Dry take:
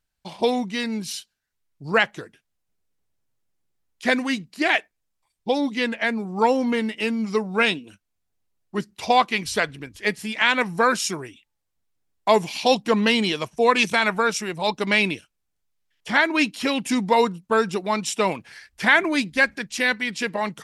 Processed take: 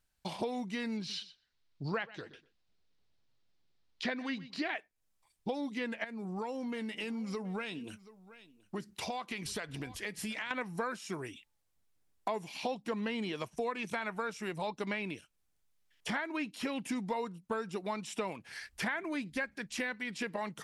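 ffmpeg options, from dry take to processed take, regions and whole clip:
-filter_complex "[0:a]asettb=1/sr,asplit=3[a][b][c];[a]atrim=end=0.974[d];[b]atrim=start=0.97:end=4.74,asetpts=PTS-STARTPTS,afade=t=in:d=0.004:c=qsin,afade=t=out:st=3.766:d=0.004:c=qsin,lowpass=f=4.3k:t=q:w=2.2,asplit=2[e][f];[f]adelay=123,lowpass=f=2.6k:p=1,volume=-21dB,asplit=2[g][h];[h]adelay=123,lowpass=f=2.6k:p=1,volume=0.15[i];[e][g][i]amix=inputs=3:normalize=0,atrim=end_sample=166257[j];[c]atrim=start=4.736[k];[d][j]acrossfade=d=0.004:c1=hsin:c2=qsin[l];[l][k]acrossfade=d=0.004:c1=qsin:c2=hsin,asettb=1/sr,asplit=3[m][n][o];[m]atrim=end=6.044[p];[n]atrim=start=6.04:end=10.51,asetpts=PTS-STARTPTS,afade=t=in:d=0.004:c=qsin,afade=t=out:st=4.466:d=0.004:c=qsin,acompressor=threshold=-35dB:ratio=3:attack=3.2:release=140:knee=1:detection=peak,aecho=1:1:726:0.0794,atrim=end_sample=197127[q];[o]atrim=start=10.506[r];[p][q]acrossfade=d=0.004:c1=hsin:c2=qsin[s];[s][r]acrossfade=d=0.004:c1=qsin:c2=hsin,acrossover=split=2500[t][u];[u]acompressor=threshold=-36dB:ratio=4:attack=1:release=60[v];[t][v]amix=inputs=2:normalize=0,equalizer=f=10k:w=1.5:g=2,acompressor=threshold=-35dB:ratio=5"

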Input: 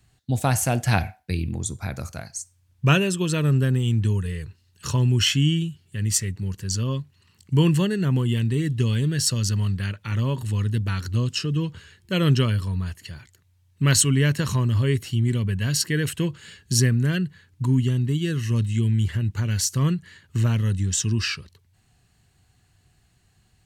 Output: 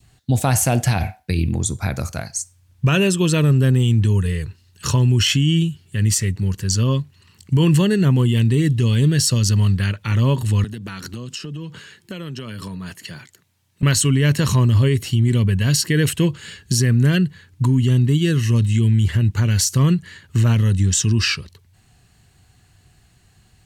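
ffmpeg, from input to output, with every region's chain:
-filter_complex "[0:a]asettb=1/sr,asplit=3[a][b][c];[a]atrim=end=10.644[d];[b]atrim=start=10.64:end=13.83,asetpts=PTS-STARTPTS,afade=t=in:d=0.004:c=qsin,afade=t=out:st=3.186:d=0.004:c=qsin,highpass=f=140:w=0.5412,highpass=f=140:w=1.3066,acompressor=threshold=-34dB:ratio=16:attack=3.2:release=140:knee=1:detection=peak[e];[c]atrim=start=13.826[f];[d][e]acrossfade=d=0.004:c1=hsin:c2=qsin[g];[g][f]acrossfade=d=0.004:c1=qsin:c2=hsin,adynamicequalizer=threshold=0.00501:dfrequency=1500:dqfactor=2.1:tfrequency=1500:tqfactor=2.1:attack=5:release=100:ratio=0.375:range=2:mode=cutabove:tftype=bell,alimiter=limit=-16dB:level=0:latency=1:release=44,volume=7.5dB"

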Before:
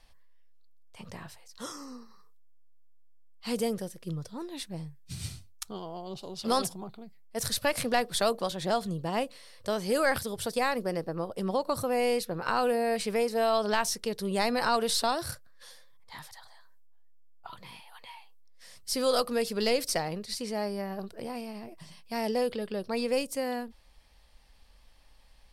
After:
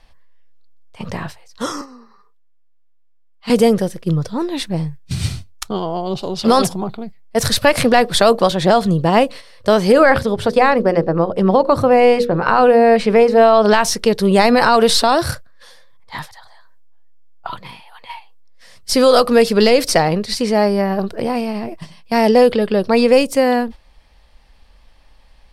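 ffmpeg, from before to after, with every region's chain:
-filter_complex "[0:a]asettb=1/sr,asplit=3[a][b][c];[a]atrim=end=1.814[d];[b]atrim=start=1.81:end=3.5,asetpts=PTS-STARTPTS,afade=t=in:d=0.004:c=qsin,afade=t=out:st=1.686:d=0.004:c=qsin,bass=f=250:g=-11,treble=f=4k:g=-8,aecho=1:1:5:0.31,atrim=end_sample=74529,acrossover=split=240|3000[e][f][g];[f]acompressor=threshold=-52dB:ratio=2:attack=3.2:release=140:knee=2.83:detection=peak[h];[e][h][g]amix=inputs=3:normalize=0[i];[c]atrim=start=3.496[j];[d][i]acrossfade=d=0.004:c1=hsin:c2=qsin[k];[k][j]acrossfade=d=0.004:c1=qsin:c2=hsin,asettb=1/sr,asplit=3[l][m][n];[l]atrim=end=9.924[o];[m]atrim=start=9.92:end=13.65,asetpts=PTS-STARTPTS,afade=t=in:d=0.004:c=qsin,afade=t=out:st=3.726:d=0.004:c=qsin,lowpass=f=2.4k:p=1,bandreject=f=60:t=h:w=6,bandreject=f=120:t=h:w=6,bandreject=f=180:t=h:w=6,bandreject=f=240:t=h:w=6,bandreject=f=300:t=h:w=6,bandreject=f=360:t=h:w=6,bandreject=f=420:t=h:w=6,bandreject=f=480:t=h:w=6,bandreject=f=540:t=h:w=6[p];[n]atrim=start=13.646[q];[o][p]acrossfade=d=0.004:c1=hsin:c2=qsin[r];[r][q]acrossfade=d=0.004:c1=qsin:c2=hsin,highshelf=f=5.5k:g=-11,agate=range=-8dB:threshold=-47dB:ratio=16:detection=peak,alimiter=level_in=19dB:limit=-1dB:release=50:level=0:latency=1,volume=-1dB"

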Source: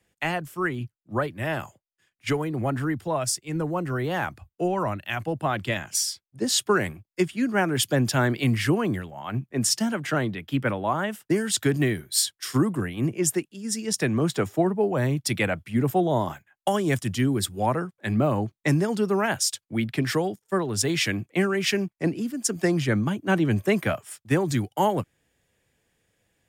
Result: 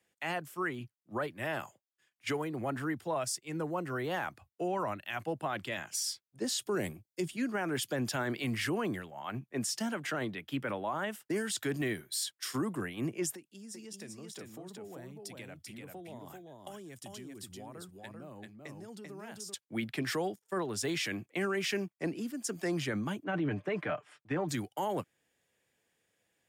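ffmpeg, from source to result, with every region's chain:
-filter_complex "[0:a]asettb=1/sr,asplit=3[a][b][c];[a]atrim=end=6.624[d];[b]atrim=start=6.62:end=7.37,asetpts=PTS-STARTPTS,afade=t=in:d=0.004:c=qsin,afade=t=out:st=0.746:d=0.004:c=qsin,equalizer=f=1.5k:w=0.65:g=-12,acontrast=32[e];[c]atrim=start=7.366[f];[d][e]acrossfade=d=0.004:c1=hsin:c2=qsin[g];[g][f]acrossfade=d=0.004:c1=qsin:c2=hsin,asettb=1/sr,asplit=3[h][i][j];[h]atrim=end=13.354[k];[i]atrim=start=13.35:end=19.54,asetpts=PTS-STARTPTS,afade=t=in:d=0.004:c=qsin,afade=t=out:st=6.186:d=0.004:c=qsin,equalizer=f=1.2k:t=o:w=2.8:g=-7,acompressor=threshold=-36dB:ratio=10:attack=3.2:release=140:knee=1:detection=peak,aecho=1:1:390:0.668,atrim=end_sample=272979[l];[j]atrim=start=19.536[m];[k][l]acrossfade=d=0.004:c1=hsin:c2=qsin[n];[n][m]acrossfade=d=0.004:c1=qsin:c2=hsin,asettb=1/sr,asplit=3[o][p][q];[o]atrim=end=23.244[r];[p]atrim=start=23.24:end=24.49,asetpts=PTS-STARTPTS,afade=t=in:d=0.004:c=qsin,afade=t=out:st=1.246:d=0.004:c=qsin,lowpass=2.6k,aecho=1:1:6.7:0.56,atrim=end_sample=55125[s];[q]atrim=start=24.486[t];[r][s]acrossfade=d=0.004:c1=hsin:c2=qsin[u];[u][t]acrossfade=d=0.004:c1=qsin:c2=hsin,highpass=f=290:p=1,alimiter=limit=-20dB:level=0:latency=1:release=19,volume=-5dB"

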